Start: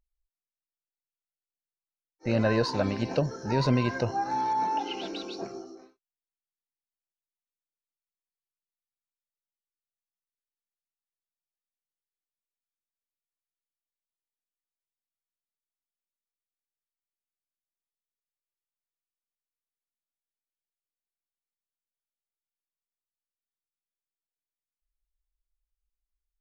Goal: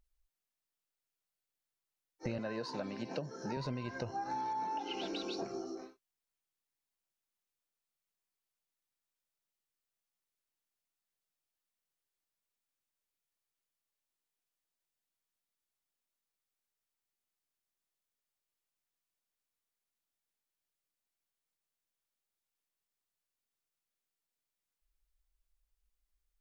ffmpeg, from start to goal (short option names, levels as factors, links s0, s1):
-filter_complex "[0:a]acompressor=threshold=0.01:ratio=8,asettb=1/sr,asplit=3[s0][s1][s2];[s0]atrim=end=2.384[s3];[s1]atrim=start=2.38:end=3.57,asetpts=PTS-STARTPTS,afade=t=in:d=0.004:c=qsin,afade=t=out:st=1.186:d=0.004:c=qsin,highpass=f=140:w=0.5412,highpass=f=140:w=1.3066[s4];[s2]atrim=start=3.566[s5];[s3][s4]acrossfade=d=0.004:c1=hsin:c2=qsin[s6];[s6][s5]acrossfade=d=0.004:c1=qsin:c2=hsin,volume=1.58"